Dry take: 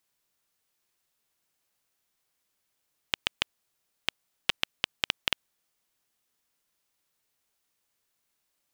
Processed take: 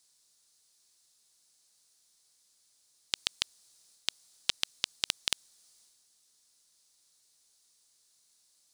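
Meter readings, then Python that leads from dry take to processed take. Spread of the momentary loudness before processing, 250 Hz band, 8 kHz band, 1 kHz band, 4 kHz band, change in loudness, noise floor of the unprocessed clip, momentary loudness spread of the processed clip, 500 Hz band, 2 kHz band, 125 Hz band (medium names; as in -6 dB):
5 LU, -7.5 dB, +7.5 dB, -7.5 dB, -1.5 dB, -1.5 dB, -79 dBFS, 5 LU, -7.5 dB, -7.0 dB, -7.5 dB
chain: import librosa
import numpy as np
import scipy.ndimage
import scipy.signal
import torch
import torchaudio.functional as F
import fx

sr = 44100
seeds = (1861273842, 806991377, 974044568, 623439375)

y = fx.transient(x, sr, attack_db=-8, sustain_db=5)
y = fx.band_shelf(y, sr, hz=6200.0, db=14.5, octaves=1.7)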